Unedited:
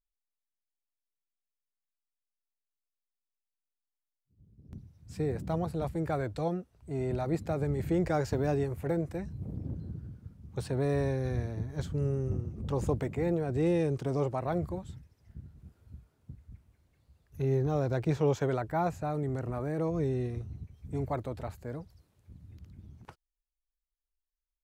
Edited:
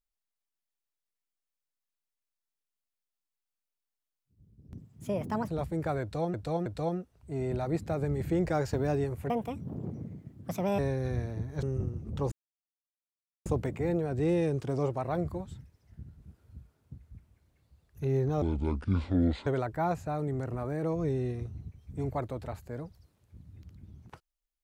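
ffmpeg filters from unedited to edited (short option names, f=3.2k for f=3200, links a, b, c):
-filter_complex "[0:a]asplit=11[a][b][c][d][e][f][g][h][i][j][k];[a]atrim=end=4.774[l];[b]atrim=start=4.77:end=5.71,asetpts=PTS-STARTPTS,asetrate=58653,aresample=44100,atrim=end_sample=31168,asetpts=PTS-STARTPTS[m];[c]atrim=start=5.706:end=6.572[n];[d]atrim=start=6.248:end=6.572[o];[e]atrim=start=6.248:end=8.894[p];[f]atrim=start=8.89:end=10.99,asetpts=PTS-STARTPTS,asetrate=62181,aresample=44100[q];[g]atrim=start=10.986:end=11.832[r];[h]atrim=start=12.138:end=12.83,asetpts=PTS-STARTPTS,afade=t=out:st=0.688:d=0.004:c=hsin,apad=pad_dur=1.14[s];[i]atrim=start=12.83:end=17.794,asetpts=PTS-STARTPTS,afade=t=in:d=0.004:c=hsin[t];[j]atrim=start=17.79:end=18.42,asetpts=PTS-STARTPTS,asetrate=26460,aresample=44100[u];[k]atrim=start=18.416[v];[l][m]acrossfade=d=0.004:c1=hsin:c2=hsin[w];[w][n]acrossfade=d=0.004:c1=hsin:c2=hsin[x];[x][o]acrossfade=d=0.004:c1=hsin:c2=hsin[y];[y][p]acrossfade=d=0.004:c1=hsin:c2=hsin[z];[z][q]acrossfade=d=0.004:c1=hsin:c2=hsin[aa];[aa][r]acrossfade=d=0.004:c1=hsin:c2=hsin[ab];[s][t]concat=n=2:v=0:a=1[ac];[ab][ac]acrossfade=d=0.004:c1=hsin:c2=hsin[ad];[ad][u]acrossfade=d=0.004:c1=hsin:c2=hsin[ae];[ae][v]acrossfade=d=0.004:c1=hsin:c2=hsin"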